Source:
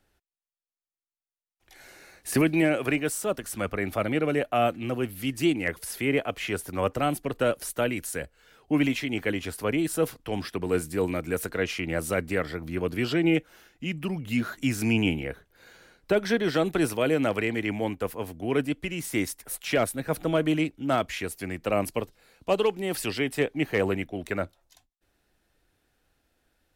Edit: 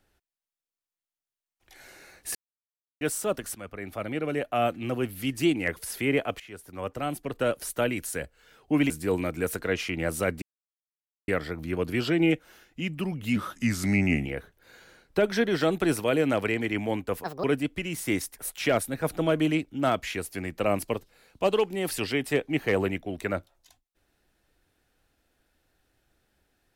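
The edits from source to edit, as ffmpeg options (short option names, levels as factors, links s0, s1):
-filter_complex "[0:a]asplit=11[s0][s1][s2][s3][s4][s5][s6][s7][s8][s9][s10];[s0]atrim=end=2.35,asetpts=PTS-STARTPTS,afade=t=out:st=2.346:d=0.004:c=hsin[s11];[s1]atrim=start=2.35:end=3.01,asetpts=PTS-STARTPTS,volume=0[s12];[s2]atrim=start=3.01:end=3.55,asetpts=PTS-STARTPTS,afade=t=in:d=0.004:c=hsin,afade=t=out:st=0.536:d=0.004:c=hsin:silence=0.223872[s13];[s3]atrim=start=3.55:end=6.4,asetpts=PTS-STARTPTS,afade=t=in:d=1.4:silence=0.223872,afade=t=out:st=2.846:d=0.004:c=hsin:silence=0.125893[s14];[s4]atrim=start=6.4:end=8.902,asetpts=PTS-STARTPTS,afade=t=in:d=1.33:silence=0.125893[s15];[s5]atrim=start=10.798:end=12.32,asetpts=PTS-STARTPTS,afade=t=out:st=1.518:d=0.004:c=hsin,apad=pad_dur=0.86[s16];[s6]atrim=start=12.32:end=14.404,asetpts=PTS-STARTPTS,afade=t=in:d=0.004:c=hsin[s17];[s7]atrim=start=14.4:end=15.19,asetpts=PTS-STARTPTS,asetrate=38808,aresample=44100[s18];[s8]atrim=start=15.186:end=18.174[s19];[s9]atrim=start=18.17:end=18.5,asetpts=PTS-STARTPTS,asetrate=72765,aresample=44100[s20];[s10]atrim=start=18.496[s21];[s11][s12][s13][s14][s15]concat=n=5:v=0:a=1[s22];[s16][s17]concat=n=2:v=0:a=1[s23];[s22][s23]acrossfade=d=0.004:c1=hsin:c2=hsin[s24];[s24][s18]acrossfade=d=0.004:c1=hsin:c2=hsin[s25];[s25][s19]acrossfade=d=0.004:c1=hsin:c2=hsin[s26];[s26][s20]acrossfade=d=0.004:c1=hsin:c2=hsin[s27];[s27][s21]acrossfade=d=0.004:c1=hsin:c2=hsin"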